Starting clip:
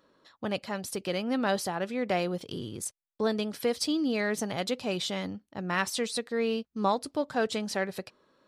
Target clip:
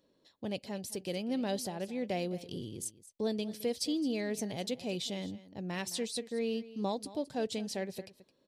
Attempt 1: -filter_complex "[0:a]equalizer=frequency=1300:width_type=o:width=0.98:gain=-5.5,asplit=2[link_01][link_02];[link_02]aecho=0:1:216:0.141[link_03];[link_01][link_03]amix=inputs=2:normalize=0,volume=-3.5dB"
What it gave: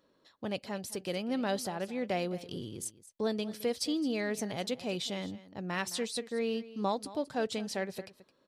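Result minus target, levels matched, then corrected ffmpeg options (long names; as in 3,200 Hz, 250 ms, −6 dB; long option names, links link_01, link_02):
1,000 Hz band +3.0 dB
-filter_complex "[0:a]equalizer=frequency=1300:width_type=o:width=0.98:gain=-17,asplit=2[link_01][link_02];[link_02]aecho=0:1:216:0.141[link_03];[link_01][link_03]amix=inputs=2:normalize=0,volume=-3.5dB"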